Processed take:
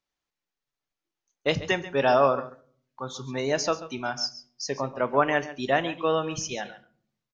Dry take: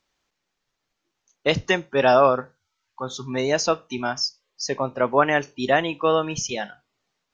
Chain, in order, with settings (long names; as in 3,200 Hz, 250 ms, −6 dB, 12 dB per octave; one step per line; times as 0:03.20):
noise gate −49 dBFS, range −8 dB
single-tap delay 137 ms −15.5 dB
on a send at −14.5 dB: convolution reverb RT60 0.55 s, pre-delay 7 ms
on the sum: level −4.5 dB